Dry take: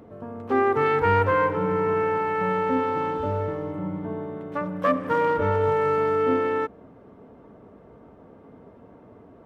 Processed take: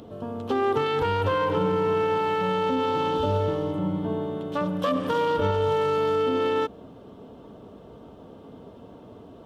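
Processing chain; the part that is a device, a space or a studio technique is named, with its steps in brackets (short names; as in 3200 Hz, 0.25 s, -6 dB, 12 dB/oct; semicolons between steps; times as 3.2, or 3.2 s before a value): over-bright horn tweeter (resonant high shelf 2600 Hz +7 dB, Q 3; limiter -18.5 dBFS, peak gain reduction 9.5 dB); gain +3.5 dB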